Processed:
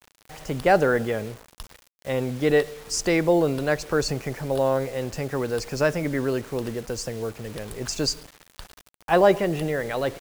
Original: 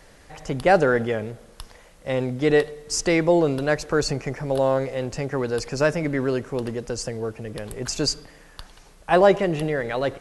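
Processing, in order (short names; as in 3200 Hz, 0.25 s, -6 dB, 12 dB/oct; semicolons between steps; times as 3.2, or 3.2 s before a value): bit-crush 7-bit; gain -1.5 dB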